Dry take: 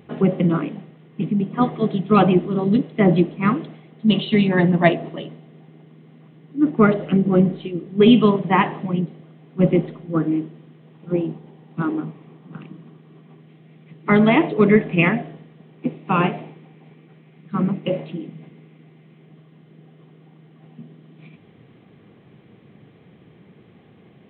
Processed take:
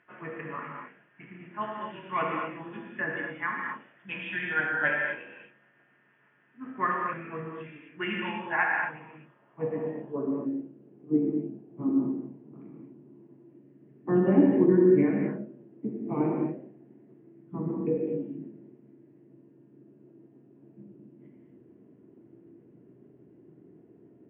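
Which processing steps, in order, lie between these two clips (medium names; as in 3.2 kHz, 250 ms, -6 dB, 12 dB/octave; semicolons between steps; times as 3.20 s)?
rotating-head pitch shifter -2.5 st; band-pass sweep 1.6 kHz -> 330 Hz, 8.95–10.70 s; gated-style reverb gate 280 ms flat, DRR -1.5 dB; trim -1.5 dB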